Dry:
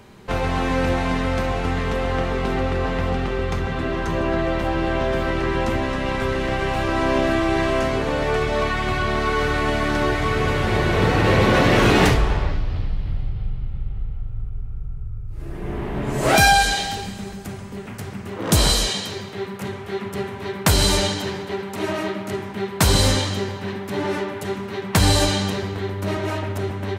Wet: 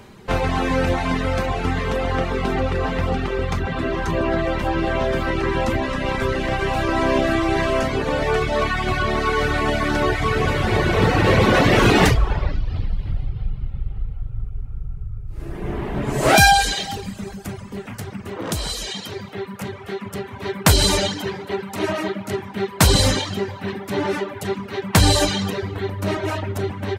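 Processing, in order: reverb removal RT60 0.82 s; 17.83–20.31 s: compression 3:1, threshold -29 dBFS, peak gain reduction 12.5 dB; trim +3 dB

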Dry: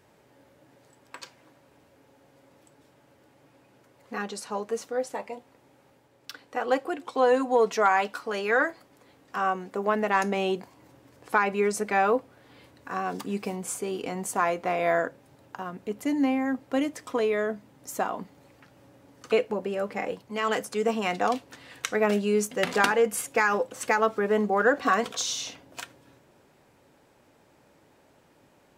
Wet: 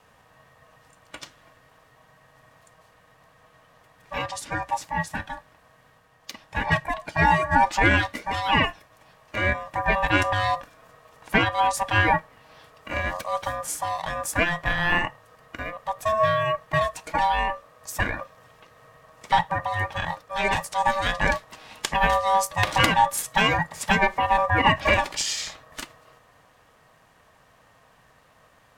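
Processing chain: every band turned upside down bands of 500 Hz; ring modulator 870 Hz; Chebyshev shaper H 4 -24 dB, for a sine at -6.5 dBFS; trim +6 dB

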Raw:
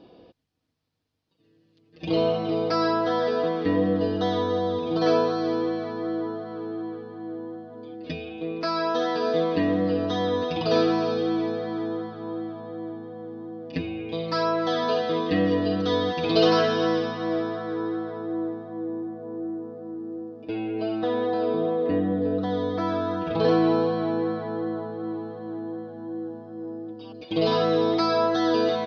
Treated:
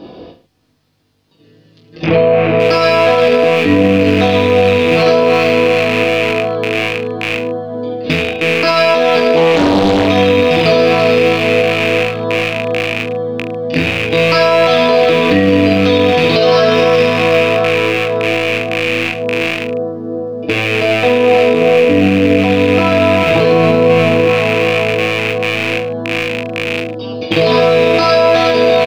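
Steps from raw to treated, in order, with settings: rattle on loud lows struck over -38 dBFS, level -20 dBFS; 2.04–2.60 s: low-pass 1.8 kHz 12 dB/octave; 23.52–24.26 s: bass shelf 470 Hz +6.5 dB; in parallel at -2 dB: compression, threshold -30 dBFS, peak gain reduction 15.5 dB; on the sum: reverse bouncing-ball echo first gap 20 ms, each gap 1.2×, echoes 5; loudness maximiser +12.5 dB; 9.36–10.08 s: loudspeaker Doppler distortion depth 0.65 ms; trim -1 dB

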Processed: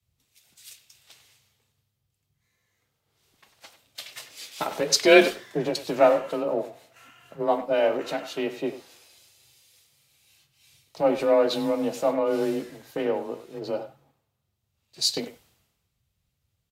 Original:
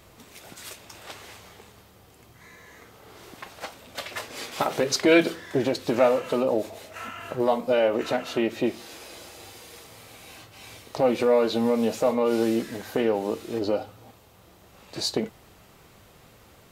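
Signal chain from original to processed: speakerphone echo 100 ms, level -9 dB; frequency shift +27 Hz; three bands expanded up and down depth 100%; trim -4 dB

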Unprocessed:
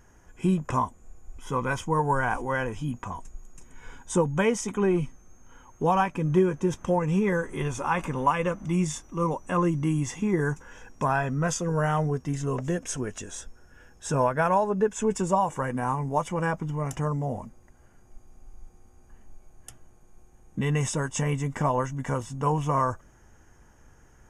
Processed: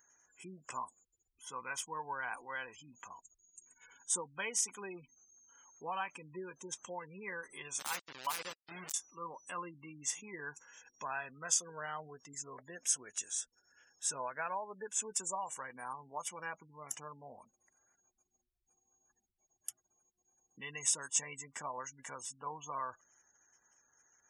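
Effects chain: 7.79–8.94 s: send-on-delta sampling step -23.5 dBFS; spectral gate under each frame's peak -30 dB strong; differentiator; trim +2.5 dB

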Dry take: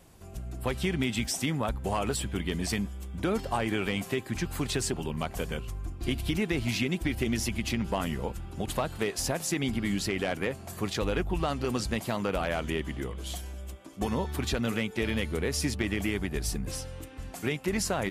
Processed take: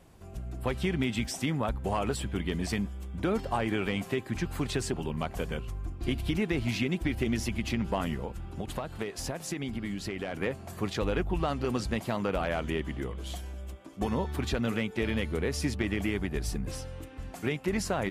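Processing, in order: treble shelf 4.1 kHz -7.5 dB; 8.14–10.34 s: compression, threshold -31 dBFS, peak gain reduction 7 dB

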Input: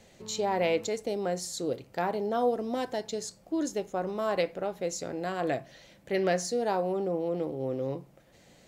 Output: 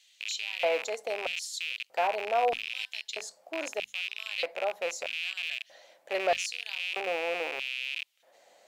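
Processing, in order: rattle on loud lows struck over -46 dBFS, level -21 dBFS; LFO high-pass square 0.79 Hz 650–3100 Hz; hum notches 50/100/150/200/250 Hz; trim -3 dB

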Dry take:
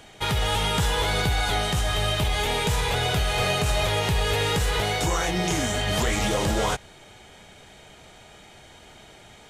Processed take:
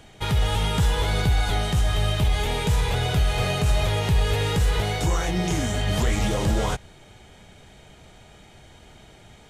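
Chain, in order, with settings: bass shelf 250 Hz +9 dB; trim -3.5 dB

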